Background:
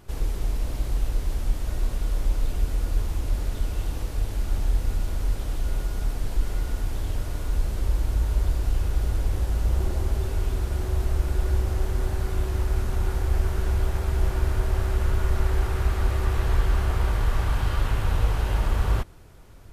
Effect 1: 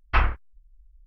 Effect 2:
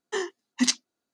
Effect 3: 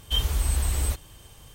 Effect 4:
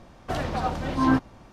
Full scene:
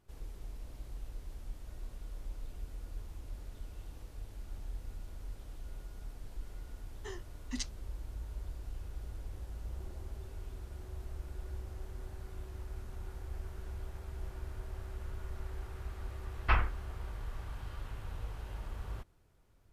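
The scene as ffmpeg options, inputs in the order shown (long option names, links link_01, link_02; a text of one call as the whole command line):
ffmpeg -i bed.wav -i cue0.wav -i cue1.wav -filter_complex "[0:a]volume=-19dB[link_01];[2:a]atrim=end=1.13,asetpts=PTS-STARTPTS,volume=-16.5dB,afade=type=in:duration=0.004:curve=hsin,afade=type=out:start_time=1.126:duration=0.004:curve=hsin,adelay=6920[link_02];[1:a]atrim=end=1.06,asetpts=PTS-STARTPTS,volume=-7dB,afade=type=in:duration=0.004:curve=hsin,afade=type=out:start_time=1.056:duration=0.004:curve=hsin,adelay=16350[link_03];[link_01][link_02][link_03]amix=inputs=3:normalize=0" out.wav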